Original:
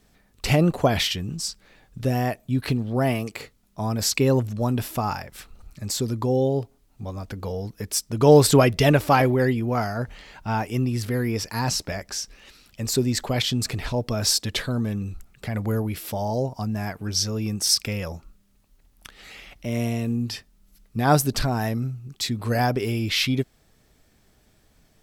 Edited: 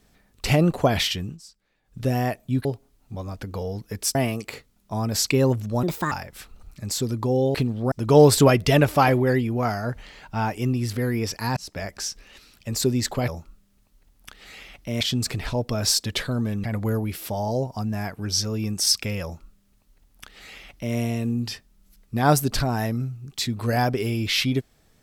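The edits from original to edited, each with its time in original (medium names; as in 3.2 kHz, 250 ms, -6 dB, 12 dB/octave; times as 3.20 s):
1.24–1.99 s: dip -17.5 dB, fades 0.15 s
2.65–3.02 s: swap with 6.54–8.04 s
4.70–5.11 s: speed 143%
11.69–11.97 s: fade in
15.03–15.46 s: delete
18.05–19.78 s: copy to 13.40 s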